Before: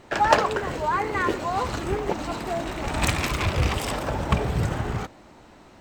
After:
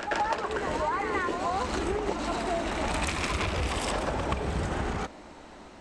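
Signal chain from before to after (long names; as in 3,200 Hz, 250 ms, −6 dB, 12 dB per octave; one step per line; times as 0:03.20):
Butterworth low-pass 11,000 Hz 72 dB per octave
parametric band 120 Hz −12 dB 0.49 octaves
downward compressor 10 to 1, threshold −28 dBFS, peak gain reduction 17 dB
backwards echo 128 ms −6 dB
level +2 dB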